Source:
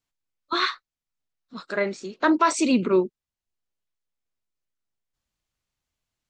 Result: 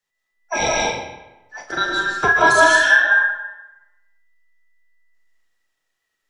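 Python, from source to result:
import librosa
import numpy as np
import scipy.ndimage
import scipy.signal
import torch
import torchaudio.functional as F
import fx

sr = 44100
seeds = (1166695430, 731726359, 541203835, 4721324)

y = fx.band_invert(x, sr, width_hz=2000)
y = fx.room_early_taps(y, sr, ms=(40, 70), db=(-7.5, -13.5))
y = fx.rev_freeverb(y, sr, rt60_s=1.0, hf_ratio=0.75, predelay_ms=105, drr_db=-3.0)
y = F.gain(torch.from_numpy(y), 2.0).numpy()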